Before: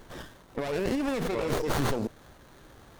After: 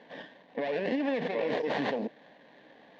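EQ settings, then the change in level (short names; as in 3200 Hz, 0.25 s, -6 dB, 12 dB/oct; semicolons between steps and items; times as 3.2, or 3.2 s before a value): speaker cabinet 260–3600 Hz, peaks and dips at 330 Hz +10 dB, 1300 Hz +8 dB, 1800 Hz +10 dB; fixed phaser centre 350 Hz, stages 6; +1.5 dB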